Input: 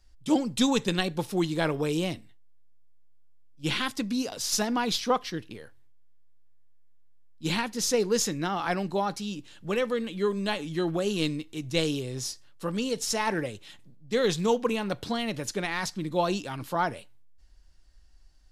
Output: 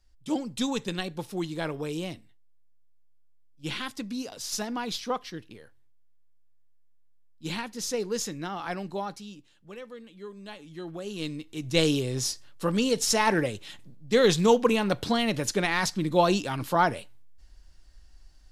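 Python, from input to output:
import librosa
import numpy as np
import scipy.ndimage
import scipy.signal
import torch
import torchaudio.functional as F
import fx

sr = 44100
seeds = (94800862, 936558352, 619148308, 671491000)

y = fx.gain(x, sr, db=fx.line((9.03, -5.0), (9.66, -15.0), (10.32, -15.0), (11.08, -8.5), (11.86, 4.5)))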